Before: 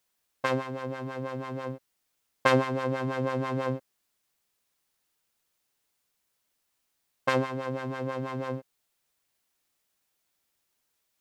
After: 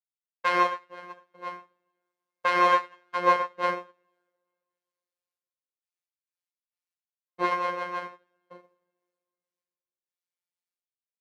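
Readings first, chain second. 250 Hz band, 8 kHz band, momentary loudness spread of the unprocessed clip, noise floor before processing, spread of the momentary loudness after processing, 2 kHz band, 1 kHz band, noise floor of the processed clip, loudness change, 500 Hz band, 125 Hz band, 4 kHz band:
−7.5 dB, can't be measured, 11 LU, −78 dBFS, 18 LU, +3.5 dB, +8.0 dB, below −85 dBFS, +4.5 dB, −2.0 dB, −17.5 dB, +2.0 dB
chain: meter weighting curve A
flutter between parallel walls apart 4.4 metres, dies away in 0.24 s
gate pattern "..x.x.x..xxx" 67 BPM −60 dB
coupled-rooms reverb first 0.75 s, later 2.6 s, DRR −2.5 dB
dynamic equaliser 1,500 Hz, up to +3 dB, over −41 dBFS, Q 0.87
phases set to zero 177 Hz
boost into a limiter +13 dB
expander for the loud parts 2.5 to 1, over −32 dBFS
level −4 dB

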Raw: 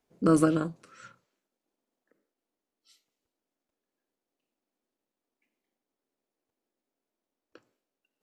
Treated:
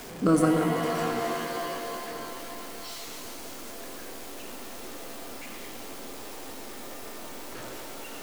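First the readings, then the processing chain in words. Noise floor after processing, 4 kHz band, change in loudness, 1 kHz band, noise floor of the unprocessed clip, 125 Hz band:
−40 dBFS, +16.0 dB, −6.5 dB, +8.0 dB, below −85 dBFS, +2.0 dB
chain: converter with a step at zero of −36 dBFS
reverb with rising layers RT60 3.1 s, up +7 semitones, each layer −2 dB, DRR 4.5 dB

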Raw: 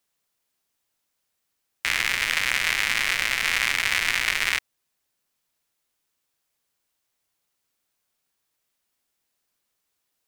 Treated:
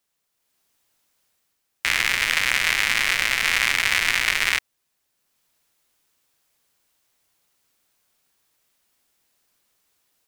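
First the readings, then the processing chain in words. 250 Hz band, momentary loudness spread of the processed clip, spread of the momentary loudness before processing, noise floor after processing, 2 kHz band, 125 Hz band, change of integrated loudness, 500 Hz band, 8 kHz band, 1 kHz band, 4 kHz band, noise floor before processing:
+2.5 dB, 3 LU, 3 LU, −75 dBFS, +2.5 dB, +2.5 dB, +2.5 dB, +2.5 dB, +2.5 dB, +2.5 dB, +2.5 dB, −78 dBFS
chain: automatic gain control gain up to 8 dB

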